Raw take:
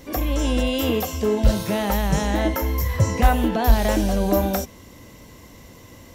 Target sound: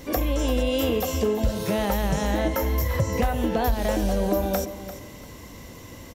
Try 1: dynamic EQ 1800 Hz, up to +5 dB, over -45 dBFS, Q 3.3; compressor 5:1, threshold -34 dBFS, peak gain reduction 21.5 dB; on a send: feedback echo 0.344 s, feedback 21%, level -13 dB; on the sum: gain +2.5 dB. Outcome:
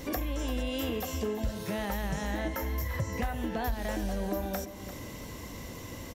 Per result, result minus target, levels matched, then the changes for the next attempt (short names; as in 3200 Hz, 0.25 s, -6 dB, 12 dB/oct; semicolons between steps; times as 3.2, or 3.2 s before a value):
compressor: peak gain reduction +9 dB; 2000 Hz band +4.5 dB
change: compressor 5:1, threshold -23 dBFS, peak gain reduction 13 dB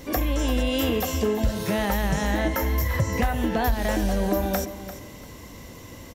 2000 Hz band +3.5 dB
change: dynamic EQ 510 Hz, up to +5 dB, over -45 dBFS, Q 3.3